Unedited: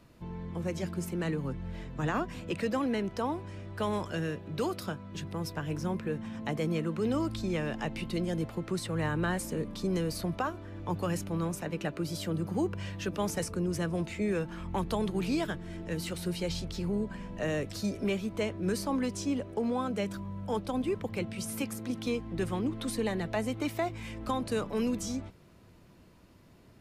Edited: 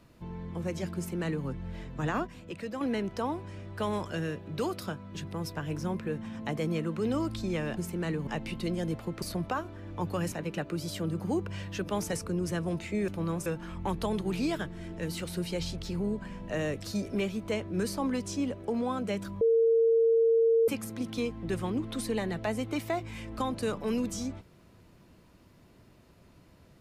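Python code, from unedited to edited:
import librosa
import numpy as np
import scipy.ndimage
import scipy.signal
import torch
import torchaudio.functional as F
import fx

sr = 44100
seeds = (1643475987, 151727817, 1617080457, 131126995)

y = fx.edit(x, sr, fx.duplicate(start_s=0.96, length_s=0.5, to_s=7.77),
    fx.clip_gain(start_s=2.27, length_s=0.54, db=-6.5),
    fx.cut(start_s=8.72, length_s=1.39),
    fx.move(start_s=11.21, length_s=0.38, to_s=14.35),
    fx.bleep(start_s=20.3, length_s=1.27, hz=456.0, db=-20.0), tone=tone)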